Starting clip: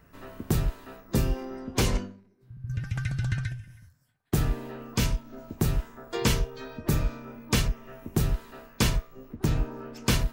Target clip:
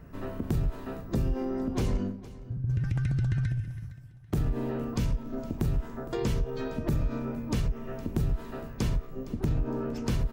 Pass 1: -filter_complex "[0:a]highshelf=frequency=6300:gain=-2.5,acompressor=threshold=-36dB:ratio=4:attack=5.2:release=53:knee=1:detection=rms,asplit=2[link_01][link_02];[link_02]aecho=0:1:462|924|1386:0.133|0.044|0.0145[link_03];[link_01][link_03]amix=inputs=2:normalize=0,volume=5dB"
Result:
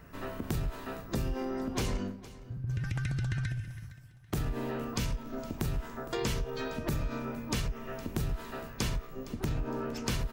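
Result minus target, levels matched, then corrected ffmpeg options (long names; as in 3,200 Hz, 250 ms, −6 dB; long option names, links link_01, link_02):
1,000 Hz band +5.0 dB
-filter_complex "[0:a]highshelf=frequency=6300:gain=-2.5,acompressor=threshold=-36dB:ratio=4:attack=5.2:release=53:knee=1:detection=rms,tiltshelf=frequency=750:gain=5.5,asplit=2[link_01][link_02];[link_02]aecho=0:1:462|924|1386:0.133|0.044|0.0145[link_03];[link_01][link_03]amix=inputs=2:normalize=0,volume=5dB"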